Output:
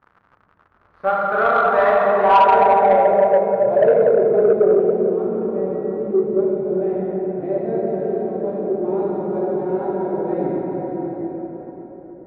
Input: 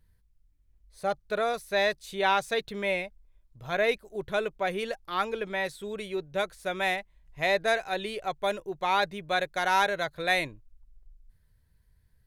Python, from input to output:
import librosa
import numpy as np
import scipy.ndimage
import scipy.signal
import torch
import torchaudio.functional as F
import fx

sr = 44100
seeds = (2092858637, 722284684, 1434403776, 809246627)

y = fx.block_float(x, sr, bits=3)
y = fx.bandpass_edges(y, sr, low_hz=140.0, high_hz=4500.0)
y = fx.rev_plate(y, sr, seeds[0], rt60_s=4.8, hf_ratio=0.5, predelay_ms=0, drr_db=-8.0)
y = fx.dmg_crackle(y, sr, seeds[1], per_s=110.0, level_db=-38.0)
y = fx.echo_opening(y, sr, ms=142, hz=200, octaves=2, feedback_pct=70, wet_db=-6)
y = (np.kron(scipy.signal.resample_poly(y, 1, 3), np.eye(3)[0]) * 3)[:len(y)]
y = fx.filter_sweep_lowpass(y, sr, from_hz=1300.0, to_hz=330.0, start_s=1.59, end_s=5.26, q=3.4)
y = 10.0 ** (-7.0 / 20.0) * np.tanh(y / 10.0 ** (-7.0 / 20.0))
y = y * 10.0 ** (2.0 / 20.0)